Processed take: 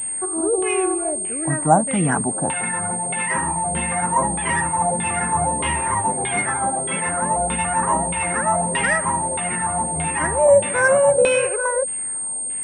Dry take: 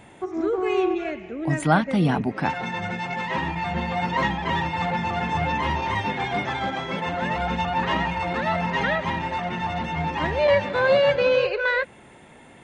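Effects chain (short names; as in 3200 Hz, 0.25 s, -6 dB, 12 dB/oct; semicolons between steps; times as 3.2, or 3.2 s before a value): LFO low-pass saw down 1.6 Hz 510–3400 Hz; pulse-width modulation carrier 8600 Hz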